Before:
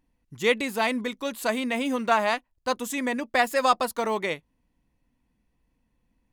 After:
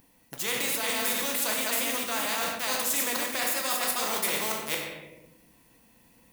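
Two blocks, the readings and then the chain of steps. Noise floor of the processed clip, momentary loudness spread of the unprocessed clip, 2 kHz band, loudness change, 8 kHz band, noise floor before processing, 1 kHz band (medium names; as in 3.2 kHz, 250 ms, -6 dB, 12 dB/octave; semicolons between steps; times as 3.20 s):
-61 dBFS, 7 LU, -2.0 dB, -1.0 dB, +11.0 dB, -74 dBFS, -7.0 dB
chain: chunks repeated in reverse 226 ms, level -2 dB; treble shelf 5.1 kHz +6 dB; in parallel at -3 dB: word length cut 6-bit, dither none; on the sum: high-pass 360 Hz 6 dB/octave; treble shelf 11 kHz +11.5 dB; simulated room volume 150 m³, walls mixed, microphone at 0.74 m; reverse; compression 6:1, threshold -23 dBFS, peak gain reduction 13 dB; reverse; spectrum-flattening compressor 2:1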